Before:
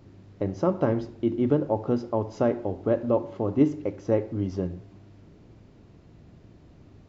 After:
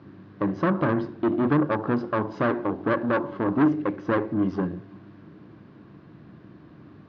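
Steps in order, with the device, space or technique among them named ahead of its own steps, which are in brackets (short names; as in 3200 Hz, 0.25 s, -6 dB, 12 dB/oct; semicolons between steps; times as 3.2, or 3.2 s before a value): guitar amplifier (tube stage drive 26 dB, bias 0.6; tone controls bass -3 dB, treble +1 dB; speaker cabinet 90–4300 Hz, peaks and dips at 140 Hz +7 dB, 200 Hz +8 dB, 310 Hz +8 dB, 1100 Hz +10 dB, 1600 Hz +10 dB); gain +4.5 dB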